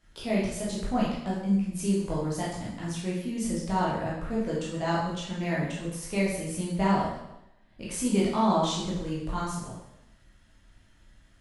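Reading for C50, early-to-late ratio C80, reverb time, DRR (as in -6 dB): 1.5 dB, 5.0 dB, 0.85 s, -7.0 dB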